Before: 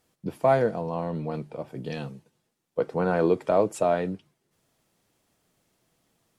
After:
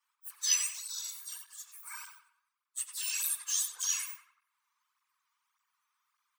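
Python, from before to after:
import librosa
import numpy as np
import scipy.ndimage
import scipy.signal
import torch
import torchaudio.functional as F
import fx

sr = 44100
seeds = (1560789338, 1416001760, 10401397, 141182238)

y = fx.octave_mirror(x, sr, pivot_hz=2000.0)
y = scipy.signal.sosfilt(scipy.signal.ellip(4, 1.0, 40, 1000.0, 'highpass', fs=sr, output='sos'), y)
y = fx.echo_filtered(y, sr, ms=92, feedback_pct=46, hz=2900.0, wet_db=-5.0)
y = fx.flanger_cancel(y, sr, hz=1.7, depth_ms=4.1)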